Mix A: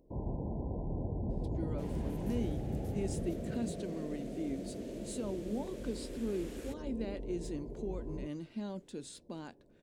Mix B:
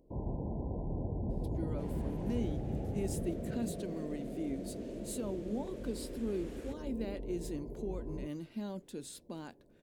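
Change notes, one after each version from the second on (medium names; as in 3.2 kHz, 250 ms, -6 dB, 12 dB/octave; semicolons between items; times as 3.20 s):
speech: remove Savitzky-Golay filter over 9 samples; second sound: add tilt EQ -2.5 dB/octave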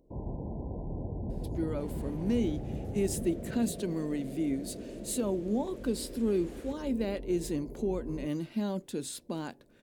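speech +8.0 dB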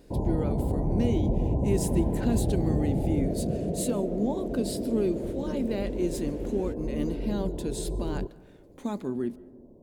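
speech: entry -1.30 s; first sound +9.5 dB; reverb: on, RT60 1.3 s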